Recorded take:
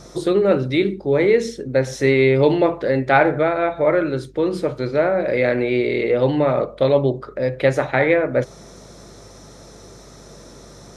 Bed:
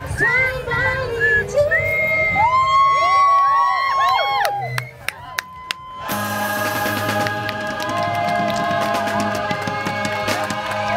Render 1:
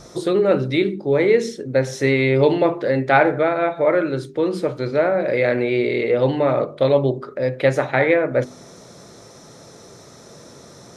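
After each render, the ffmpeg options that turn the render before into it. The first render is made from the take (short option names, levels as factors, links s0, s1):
-af "bandreject=f=50:t=h:w=4,bandreject=f=100:t=h:w=4,bandreject=f=150:t=h:w=4,bandreject=f=200:t=h:w=4,bandreject=f=250:t=h:w=4,bandreject=f=300:t=h:w=4,bandreject=f=350:t=h:w=4,bandreject=f=400:t=h:w=4"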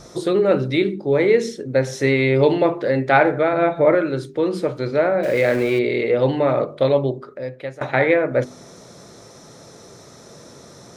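-filter_complex "[0:a]asettb=1/sr,asplit=3[s0][s1][s2];[s0]atrim=end=3.534[s3];[s1]atrim=start=3.53:end=3.95,asetpts=PTS-STARTPTS,afade=t=in:d=0.004:c=qsin,afade=t=out:st=0.416:d=0.004:c=qsin,lowshelf=f=340:g=8.5[s4];[s2]atrim=start=3.946[s5];[s3][s4]acrossfade=d=0.004:c1=hsin:c2=qsin[s6];[s6][s5]acrossfade=d=0.004:c1=qsin:c2=hsin,asettb=1/sr,asplit=3[s7][s8][s9];[s7]atrim=end=5.234[s10];[s8]atrim=start=5.23:end=5.79,asetpts=PTS-STARTPTS,afade=t=in:d=0.004:c=qsin,afade=t=out:st=0.556:d=0.004:c=qsin,aeval=exprs='val(0)+0.5*0.0316*sgn(val(0))':c=same[s11];[s9]atrim=start=5.786[s12];[s10][s11]acrossfade=d=0.004:c1=hsin:c2=qsin[s13];[s13][s12]acrossfade=d=0.004:c1=qsin:c2=hsin,asplit=2[s14][s15];[s14]atrim=end=7.81,asetpts=PTS-STARTPTS,afade=t=out:st=6.81:d=1:silence=0.0891251[s16];[s15]atrim=start=7.81,asetpts=PTS-STARTPTS,afade=t=in:d=0.004:c=hsin:silence=0.0891251[s17];[s16][s17]concat=n=2:v=0:a=1"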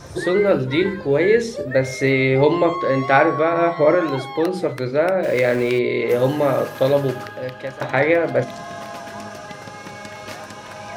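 -filter_complex "[1:a]volume=0.211[s0];[0:a][s0]amix=inputs=2:normalize=0"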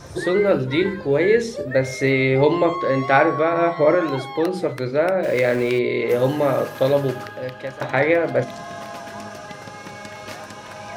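-af "volume=0.891"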